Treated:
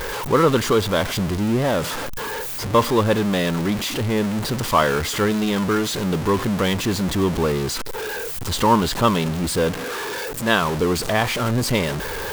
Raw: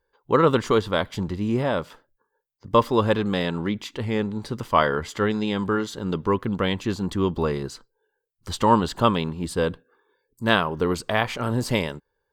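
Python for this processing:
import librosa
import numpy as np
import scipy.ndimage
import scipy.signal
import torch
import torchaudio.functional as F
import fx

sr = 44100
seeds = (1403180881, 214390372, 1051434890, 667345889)

y = x + 0.5 * 10.0 ** (-21.5 / 20.0) * np.sign(x)
y = fx.low_shelf(y, sr, hz=130.0, db=-8.0, at=(9.71, 10.62))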